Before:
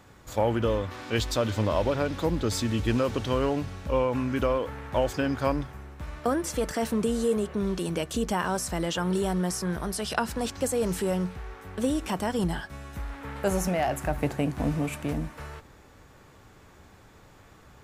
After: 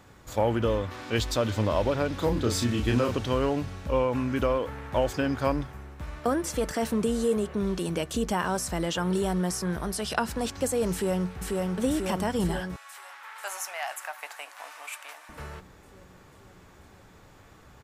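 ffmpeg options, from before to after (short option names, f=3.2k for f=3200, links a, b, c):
-filter_complex "[0:a]asettb=1/sr,asplit=3[a][b][c];[a]atrim=end=2.174[d];[b]atrim=start=2.17:end=3.16,asetpts=PTS-STARTPTS,afade=t=in:d=0.004:c=qsin,afade=t=out:st=0.986:d=0.004:c=qsin,asplit=2[e][f];[f]adelay=33,volume=-4.5dB[g];[e][g]amix=inputs=2:normalize=0,atrim=end_sample=43659[h];[c]atrim=start=3.156[i];[d][h]acrossfade=d=0.004:c1=hsin:c2=qsin[j];[j][i]acrossfade=d=0.004:c1=qsin:c2=hsin,asplit=2[k][l];[l]afade=t=in:st=10.92:d=0.01,afade=t=out:st=11.64:d=0.01,aecho=0:1:490|980|1470|1960|2450|2940|3430|3920|4410|4900|5390|5880:0.794328|0.55603|0.389221|0.272455|0.190718|0.133503|0.0934519|0.0654163|0.0457914|0.032054|0.0224378|0.0157065[m];[k][m]amix=inputs=2:normalize=0,asettb=1/sr,asplit=3[n][o][p];[n]atrim=end=12.764[q];[o]atrim=start=12.76:end=15.29,asetpts=PTS-STARTPTS,afade=t=in:d=0.004:c=qsin,afade=t=out:st=2.526:d=0.004:c=qsin,highpass=f=900:w=0.5412,highpass=f=900:w=1.3066[r];[p]atrim=start=15.286[s];[q][r]acrossfade=d=0.004:c1=hsin:c2=qsin[t];[t][s]acrossfade=d=0.004:c1=qsin:c2=hsin"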